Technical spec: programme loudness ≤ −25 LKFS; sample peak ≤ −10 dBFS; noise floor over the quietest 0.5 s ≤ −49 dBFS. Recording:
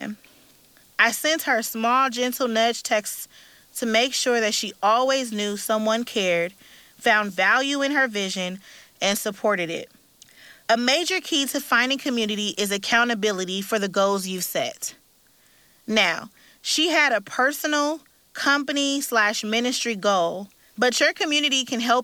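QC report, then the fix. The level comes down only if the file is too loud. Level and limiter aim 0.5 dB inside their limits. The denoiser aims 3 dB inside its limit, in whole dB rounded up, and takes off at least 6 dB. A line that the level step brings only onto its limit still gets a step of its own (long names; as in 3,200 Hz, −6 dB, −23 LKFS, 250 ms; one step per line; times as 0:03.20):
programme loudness −22.0 LKFS: out of spec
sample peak −3.5 dBFS: out of spec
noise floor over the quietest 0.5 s −58 dBFS: in spec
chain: level −3.5 dB
brickwall limiter −10.5 dBFS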